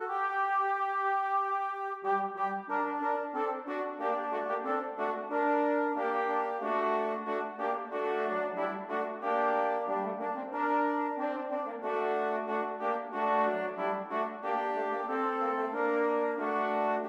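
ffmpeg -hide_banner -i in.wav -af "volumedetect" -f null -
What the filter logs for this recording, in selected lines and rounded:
mean_volume: -31.6 dB
max_volume: -16.9 dB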